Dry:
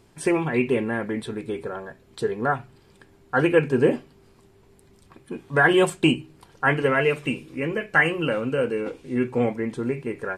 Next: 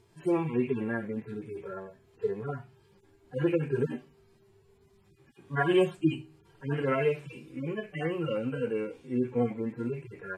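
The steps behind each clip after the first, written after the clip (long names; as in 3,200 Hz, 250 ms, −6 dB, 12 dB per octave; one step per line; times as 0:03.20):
harmonic-percussive split with one part muted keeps harmonic
level −4.5 dB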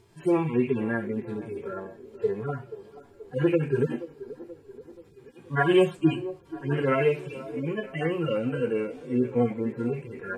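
delay with a band-pass on its return 480 ms, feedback 55%, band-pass 570 Hz, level −14 dB
level +4 dB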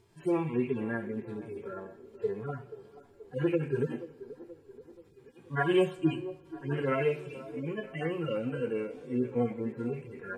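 convolution reverb RT60 1.1 s, pre-delay 36 ms, DRR 18.5 dB
level −5.5 dB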